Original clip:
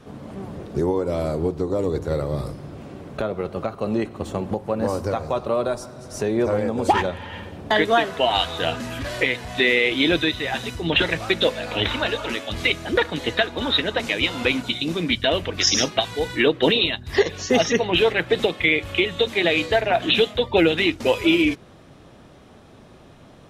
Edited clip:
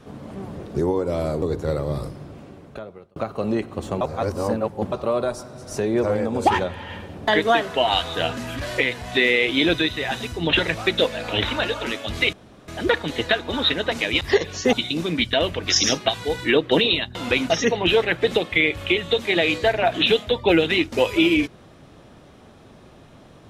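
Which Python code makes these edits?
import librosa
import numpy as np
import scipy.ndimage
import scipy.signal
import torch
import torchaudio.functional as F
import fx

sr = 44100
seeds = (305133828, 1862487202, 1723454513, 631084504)

y = fx.edit(x, sr, fx.cut(start_s=1.42, length_s=0.43),
    fx.fade_out_span(start_s=2.48, length_s=1.11),
    fx.reverse_span(start_s=4.44, length_s=0.91),
    fx.insert_room_tone(at_s=12.76, length_s=0.35),
    fx.swap(start_s=14.29, length_s=0.35, other_s=17.06, other_length_s=0.52), tone=tone)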